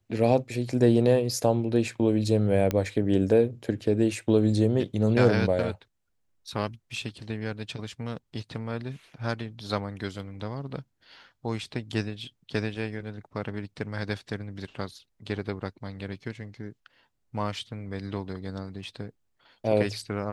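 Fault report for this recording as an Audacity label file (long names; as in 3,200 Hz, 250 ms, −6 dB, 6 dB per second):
2.710000	2.710000	click −13 dBFS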